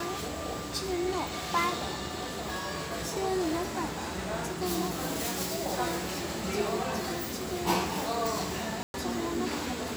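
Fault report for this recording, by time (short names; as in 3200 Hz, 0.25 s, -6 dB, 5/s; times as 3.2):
8.83–8.94 gap 0.111 s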